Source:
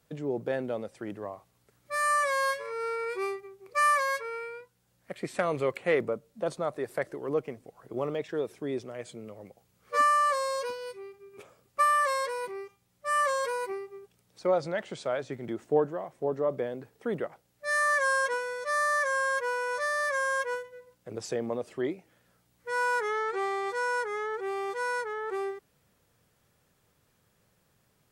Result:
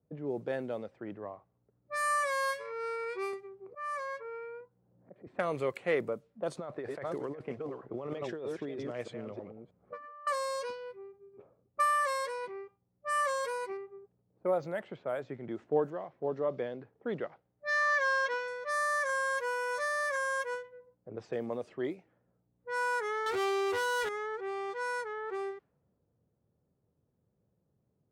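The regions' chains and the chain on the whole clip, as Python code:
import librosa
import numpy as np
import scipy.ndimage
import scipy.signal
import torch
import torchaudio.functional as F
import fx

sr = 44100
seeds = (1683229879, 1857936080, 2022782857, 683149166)

y = fx.chain(x, sr, fx.peak_eq(hz=3400.0, db=-9.0, octaves=2.5),
    fx.auto_swell(attack_ms=215.0),
    fx.band_squash(depth_pct=70), at=(3.33, 5.27))
y = fx.chain(y, sr, fx.reverse_delay(ms=316, wet_db=-7.5),
    fx.over_compress(threshold_db=-35.0, ratio=-1.0), at=(6.55, 10.27))
y = fx.chain(y, sr, fx.high_shelf(hz=4500.0, db=-10.5),
    fx.resample_linear(factor=4), at=(13.77, 15.35))
y = fx.chain(y, sr, fx.lowpass(hz=5700.0, slope=24),
    fx.dynamic_eq(hz=3100.0, q=0.81, threshold_db=-44.0, ratio=4.0, max_db=4), at=(15.9, 18.48))
y = fx.chain(y, sr, fx.zero_step(step_db=-48.0),
    fx.band_squash(depth_pct=40), at=(19.09, 20.16))
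y = fx.chain(y, sr, fx.comb_fb(f0_hz=130.0, decay_s=0.35, harmonics='all', damping=0.0, mix_pct=70),
    fx.leveller(passes=5), at=(23.26, 24.09))
y = fx.env_lowpass(y, sr, base_hz=470.0, full_db=-27.0)
y = scipy.signal.sosfilt(scipy.signal.butter(2, 60.0, 'highpass', fs=sr, output='sos'), y)
y = y * librosa.db_to_amplitude(-4.0)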